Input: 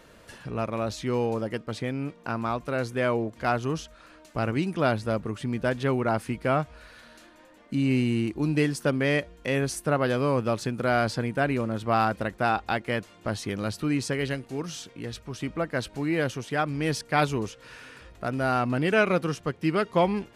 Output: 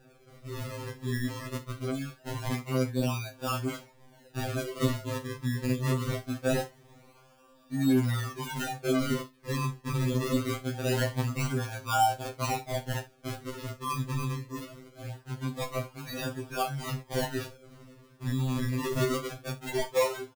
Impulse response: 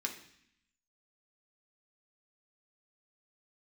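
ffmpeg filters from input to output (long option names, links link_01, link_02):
-filter_complex "[0:a]acrossover=split=280|650|3900[link_01][link_02][link_03][link_04];[link_04]acompressor=threshold=-57dB:ratio=6[link_05];[link_01][link_02][link_03][link_05]amix=inputs=4:normalize=0,flanger=delay=16:depth=3.1:speed=0.71,acrusher=samples=41:mix=1:aa=0.000001:lfo=1:lforange=41:lforate=0.23,aecho=1:1:36|66:0.237|0.126,afftfilt=real='re*2.45*eq(mod(b,6),0)':imag='im*2.45*eq(mod(b,6),0)':win_size=2048:overlap=0.75"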